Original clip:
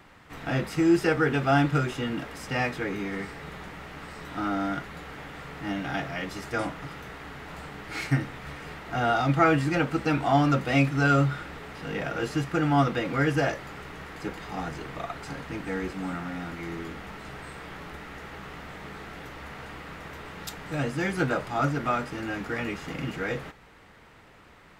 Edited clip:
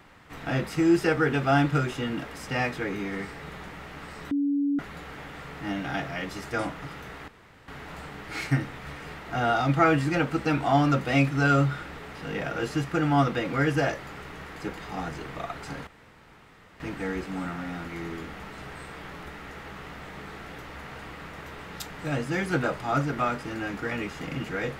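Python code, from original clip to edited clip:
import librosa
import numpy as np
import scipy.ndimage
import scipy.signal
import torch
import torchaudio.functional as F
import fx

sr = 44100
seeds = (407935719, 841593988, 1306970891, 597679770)

y = fx.edit(x, sr, fx.bleep(start_s=4.31, length_s=0.48, hz=284.0, db=-22.0),
    fx.insert_room_tone(at_s=7.28, length_s=0.4),
    fx.insert_room_tone(at_s=15.47, length_s=0.93), tone=tone)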